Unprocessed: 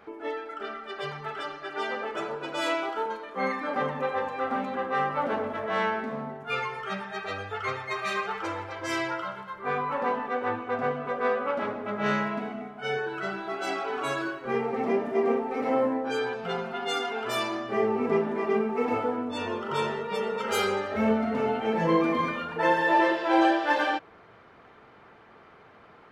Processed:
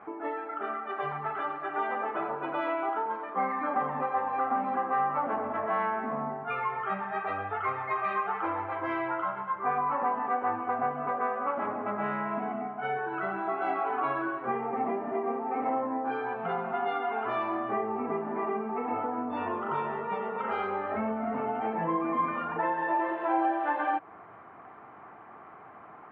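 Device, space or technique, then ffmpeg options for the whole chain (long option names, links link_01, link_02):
bass amplifier: -af "acompressor=threshold=-31dB:ratio=4,highpass=89,equalizer=frequency=310:width_type=q:width=4:gain=4,equalizer=frequency=480:width_type=q:width=4:gain=-4,equalizer=frequency=750:width_type=q:width=4:gain=9,equalizer=frequency=1100:width_type=q:width=4:gain=8,lowpass=frequency=2300:width=0.5412,lowpass=frequency=2300:width=1.3066"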